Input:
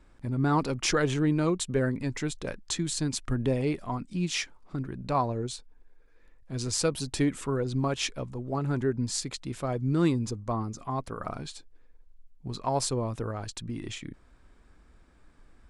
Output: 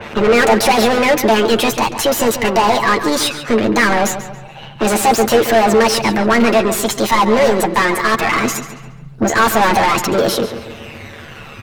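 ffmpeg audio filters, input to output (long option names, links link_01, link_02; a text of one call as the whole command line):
ffmpeg -i in.wav -filter_complex "[0:a]acrossover=split=170|3000[link_01][link_02][link_03];[link_01]acompressor=threshold=-37dB:ratio=6[link_04];[link_04][link_02][link_03]amix=inputs=3:normalize=0,asetrate=53981,aresample=44100,atempo=0.816958,asplit=2[link_05][link_06];[link_06]aeval=exprs='0.0631*(abs(mod(val(0)/0.0631+3,4)-2)-1)':channel_layout=same,volume=-4dB[link_07];[link_05][link_07]amix=inputs=2:normalize=0,tremolo=f=110:d=0.71,aphaser=in_gain=1:out_gain=1:delay=1.4:decay=0.42:speed=0.15:type=sinusoidal,asplit=2[link_08][link_09];[link_09]highpass=frequency=720:poles=1,volume=37dB,asoftclip=type=tanh:threshold=-8dB[link_10];[link_08][link_10]amix=inputs=2:normalize=0,lowpass=frequency=1600:poles=1,volume=-6dB,asplit=2[link_11][link_12];[link_12]adelay=12,volume=-5dB[link_13];[link_11][link_13]amix=inputs=2:normalize=0,asplit=2[link_14][link_15];[link_15]adelay=189,lowpass=frequency=3700:poles=1,volume=-10.5dB,asplit=2[link_16][link_17];[link_17]adelay=189,lowpass=frequency=3700:poles=1,volume=0.44,asplit=2[link_18][link_19];[link_19]adelay=189,lowpass=frequency=3700:poles=1,volume=0.44,asplit=2[link_20][link_21];[link_21]adelay=189,lowpass=frequency=3700:poles=1,volume=0.44,asplit=2[link_22][link_23];[link_23]adelay=189,lowpass=frequency=3700:poles=1,volume=0.44[link_24];[link_14][link_16][link_18][link_20][link_22][link_24]amix=inputs=6:normalize=0,asetrate=59535,aresample=44100,adynamicequalizer=threshold=0.0224:dfrequency=4000:dqfactor=0.7:tfrequency=4000:tqfactor=0.7:attack=5:release=100:ratio=0.375:range=1.5:mode=boostabove:tftype=highshelf,volume=2.5dB" out.wav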